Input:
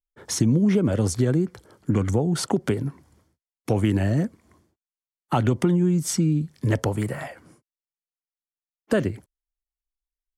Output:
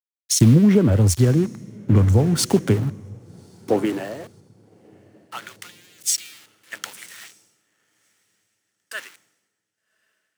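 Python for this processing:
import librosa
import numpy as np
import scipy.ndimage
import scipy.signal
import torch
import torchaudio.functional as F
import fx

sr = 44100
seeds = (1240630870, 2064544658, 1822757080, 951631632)

p1 = fx.rider(x, sr, range_db=10, speed_s=2.0)
p2 = x + F.gain(torch.from_numpy(p1), -3.0).numpy()
p3 = np.where(np.abs(p2) >= 10.0 ** (-26.5 / 20.0), p2, 0.0)
p4 = fx.filter_sweep_highpass(p3, sr, from_hz=69.0, to_hz=1500.0, start_s=2.36, end_s=5.11, q=1.5)
p5 = p4 + fx.echo_diffused(p4, sr, ms=1128, feedback_pct=53, wet_db=-14.0, dry=0)
p6 = fx.band_widen(p5, sr, depth_pct=100)
y = F.gain(torch.from_numpy(p6), -6.0).numpy()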